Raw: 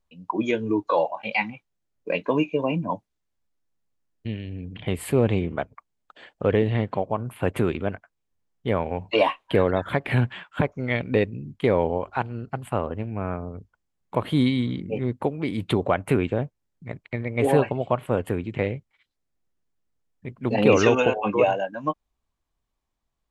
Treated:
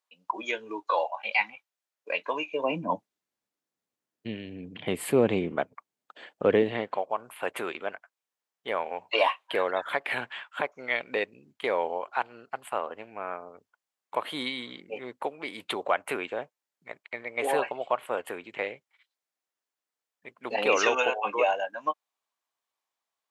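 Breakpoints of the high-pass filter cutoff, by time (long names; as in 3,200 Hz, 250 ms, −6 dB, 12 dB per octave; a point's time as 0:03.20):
0:02.45 790 Hz
0:02.89 230 Hz
0:06.56 230 Hz
0:07.03 690 Hz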